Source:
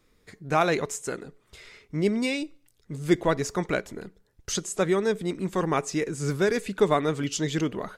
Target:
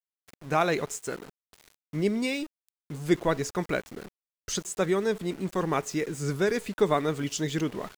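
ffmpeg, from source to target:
-af "aeval=exprs='val(0)*gte(abs(val(0)),0.01)':c=same,volume=-2dB"

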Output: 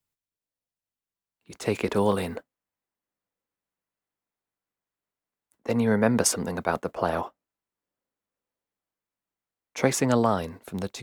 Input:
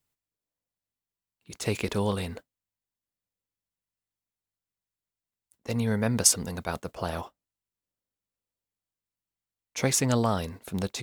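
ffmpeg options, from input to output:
-filter_complex "[0:a]asettb=1/sr,asplit=3[a][b][c];[a]atrim=end=1.964[d];[b]atrim=start=1.96:end=2.36,asetpts=PTS-STARTPTS,afade=t=in:d=0.004:c=qsin,afade=t=out:st=0.396:d=0.004:c=qsin,highshelf=f=9.2k:g=11.5[e];[c]atrim=start=2.356[f];[d][e]acrossfade=d=0.004:c1=hsin:c2=qsin[g];[g][f]acrossfade=d=0.004:c1=qsin:c2=hsin,acrossover=split=190|2100[h][i][j];[i]dynaudnorm=f=640:g=5:m=12dB[k];[h][k][j]amix=inputs=3:normalize=0,volume=-4dB"

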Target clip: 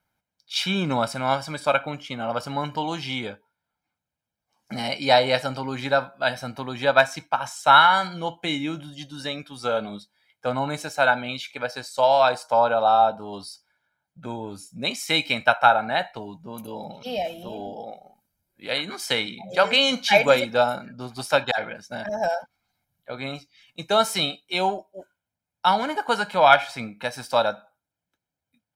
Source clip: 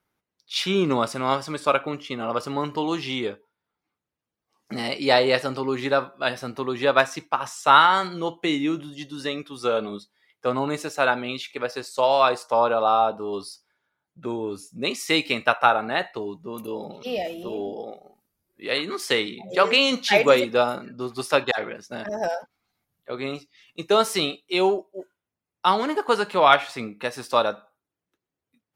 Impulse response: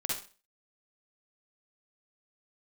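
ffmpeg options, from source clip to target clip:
-af "aecho=1:1:1.3:0.67,volume=-1dB"

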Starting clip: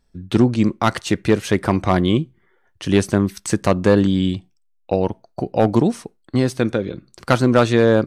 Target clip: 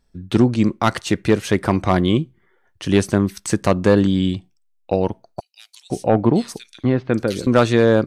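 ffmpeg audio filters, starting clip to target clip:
-filter_complex "[0:a]asettb=1/sr,asplit=3[a][b][c];[a]atrim=end=5.404[d];[b]atrim=start=5.4:end=7.47,asetpts=PTS-STARTPTS,afade=t=in:d=0.004:c=qsin,afade=t=out:st=2.066:d=0.004:c=qsin,acrossover=split=3000[e][f];[e]adelay=500[g];[g][f]amix=inputs=2:normalize=0,atrim=end_sample=91287[h];[c]atrim=start=7.466[i];[d][h]acrossfade=d=0.004:c1=hsin:c2=qsin[j];[j][i]acrossfade=d=0.004:c1=qsin:c2=hsin"

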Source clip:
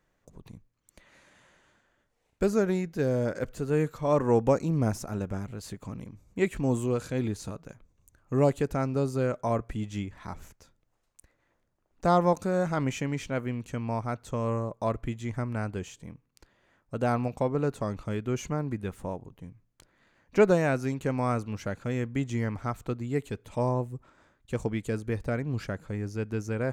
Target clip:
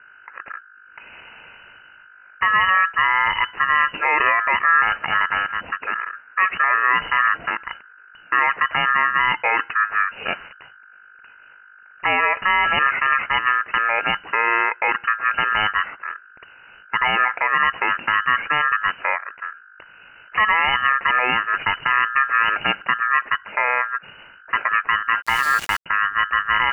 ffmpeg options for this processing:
-filter_complex "[0:a]highpass=120,acrossover=split=200|1100[a][b][c];[c]acontrast=21[d];[a][b][d]amix=inputs=3:normalize=0,aeval=exprs='val(0)+0.000891*(sin(2*PI*50*n/s)+sin(2*PI*2*50*n/s)/2+sin(2*PI*3*50*n/s)/3+sin(2*PI*4*50*n/s)/4+sin(2*PI*5*50*n/s)/5)':c=same,aeval=exprs='val(0)*sin(2*PI*1500*n/s)':c=same,asplit=2[e][f];[f]asoftclip=type=tanh:threshold=-24dB,volume=-6dB[g];[e][g]amix=inputs=2:normalize=0,lowpass=f=2.6k:t=q:w=0.5098,lowpass=f=2.6k:t=q:w=0.6013,lowpass=f=2.6k:t=q:w=0.9,lowpass=f=2.6k:t=q:w=2.563,afreqshift=-3000,asettb=1/sr,asplit=3[h][i][j];[h]atrim=end=25.224[k];[i]atrim=start=25.22:end=25.86,asetpts=PTS-STARTPTS,afade=t=in:d=0.004:c=qsin,afade=t=out:st=0.636:d=0.004:c=qsin,aeval=exprs='val(0)*gte(abs(val(0)),0.0119)':c=same[l];[j]atrim=start=25.856[m];[k][l]acrossfade=d=0.004:c1=hsin:c2=qsin[n];[n][m]acrossfade=d=0.004:c1=qsin:c2=hsin,alimiter=level_in=20dB:limit=-1dB:release=50:level=0:latency=1,volume=-6dB"

